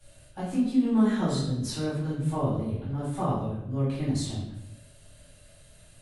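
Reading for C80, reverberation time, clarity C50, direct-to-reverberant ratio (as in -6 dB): 4.5 dB, 0.80 s, 1.0 dB, -13.5 dB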